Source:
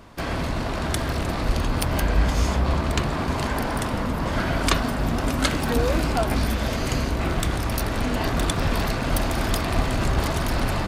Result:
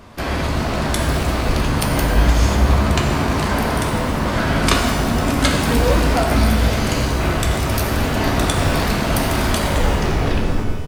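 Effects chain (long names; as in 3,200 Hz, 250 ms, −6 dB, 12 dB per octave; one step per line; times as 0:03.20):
turntable brake at the end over 1.42 s
double-tracking delay 14 ms −12 dB
reverb with rising layers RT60 1.3 s, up +12 semitones, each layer −8 dB, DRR 2 dB
level +3.5 dB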